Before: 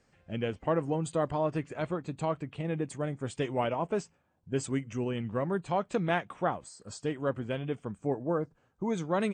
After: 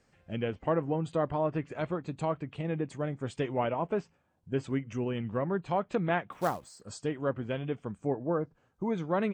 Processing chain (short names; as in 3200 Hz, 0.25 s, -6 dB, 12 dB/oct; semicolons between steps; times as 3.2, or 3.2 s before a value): treble ducked by the level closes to 2700 Hz, closed at -26.5 dBFS; 6.32–6.81 short-mantissa float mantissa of 2-bit